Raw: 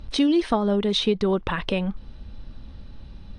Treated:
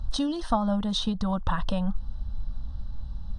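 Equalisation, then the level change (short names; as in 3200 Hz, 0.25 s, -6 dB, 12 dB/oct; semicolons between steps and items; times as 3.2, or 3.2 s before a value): low shelf 81 Hz +9.5 dB; fixed phaser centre 950 Hz, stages 4; 0.0 dB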